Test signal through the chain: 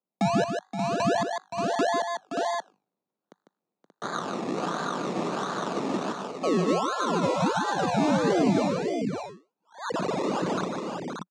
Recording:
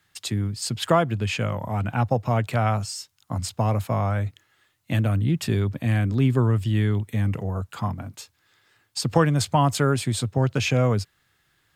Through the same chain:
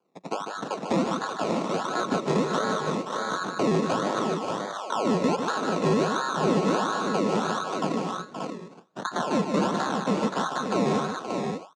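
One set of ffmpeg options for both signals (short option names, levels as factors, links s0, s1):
-filter_complex "[0:a]asuperstop=centerf=2600:order=20:qfactor=0.63,bandreject=f=50:t=h:w=6,bandreject=f=100:t=h:w=6,bandreject=f=150:t=h:w=6,bandreject=f=200:t=h:w=6,bandreject=f=250:t=h:w=6,bandreject=f=300:t=h:w=6,bandreject=f=350:t=h:w=6,bandreject=f=400:t=h:w=6,bandreject=f=450:t=h:w=6,aeval=exprs='val(0)*sin(2*PI*1200*n/s)':c=same,acrusher=samples=23:mix=1:aa=0.000001:lfo=1:lforange=13.8:lforate=1.4,lowshelf=f=320:g=5,dynaudnorm=f=130:g=31:m=1.78,highpass=f=180:w=0.5412,highpass=f=180:w=1.3066,equalizer=f=180:t=q:w=4:g=4,equalizer=f=2100:t=q:w=4:g=-6,equalizer=f=3100:t=q:w=4:g=-6,equalizer=f=5100:t=q:w=4:g=-5,lowpass=f=6700:w=0.5412,lowpass=f=6700:w=1.3066,alimiter=limit=0.188:level=0:latency=1:release=28,asplit=2[s0][s1];[s1]aecho=0:1:149|523|581:0.447|0.316|0.473[s2];[s0][s2]amix=inputs=2:normalize=0,acrossover=split=480[s3][s4];[s4]acompressor=threshold=0.0562:ratio=5[s5];[s3][s5]amix=inputs=2:normalize=0"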